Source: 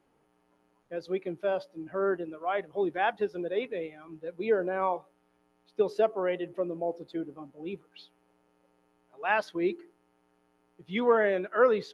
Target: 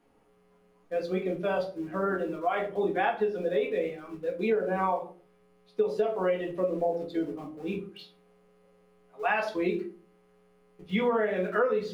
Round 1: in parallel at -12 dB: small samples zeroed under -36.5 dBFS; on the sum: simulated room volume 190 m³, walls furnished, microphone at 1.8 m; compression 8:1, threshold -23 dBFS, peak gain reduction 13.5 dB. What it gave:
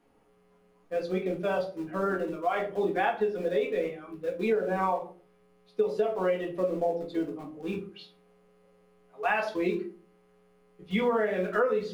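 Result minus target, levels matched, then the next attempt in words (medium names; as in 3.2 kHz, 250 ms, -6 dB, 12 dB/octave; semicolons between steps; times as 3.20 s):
small samples zeroed: distortion +7 dB
in parallel at -12 dB: small samples zeroed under -43 dBFS; on the sum: simulated room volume 190 m³, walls furnished, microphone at 1.8 m; compression 8:1, threshold -23 dBFS, peak gain reduction 13.5 dB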